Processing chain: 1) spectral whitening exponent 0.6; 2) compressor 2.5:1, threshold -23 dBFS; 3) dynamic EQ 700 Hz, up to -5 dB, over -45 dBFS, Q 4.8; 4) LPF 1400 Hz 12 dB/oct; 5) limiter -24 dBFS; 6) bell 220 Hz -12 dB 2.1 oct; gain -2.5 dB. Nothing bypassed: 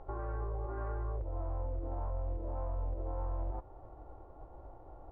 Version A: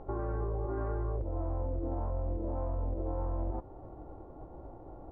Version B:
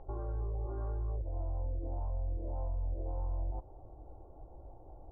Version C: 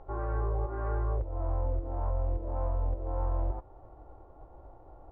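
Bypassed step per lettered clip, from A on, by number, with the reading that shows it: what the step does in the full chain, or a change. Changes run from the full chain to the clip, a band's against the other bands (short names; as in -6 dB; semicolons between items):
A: 6, 250 Hz band +5.5 dB; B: 1, 125 Hz band +4.0 dB; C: 5, mean gain reduction 3.5 dB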